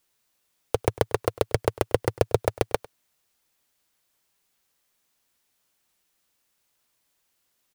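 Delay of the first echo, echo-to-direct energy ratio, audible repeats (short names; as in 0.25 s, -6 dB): 0.1 s, -20.5 dB, 1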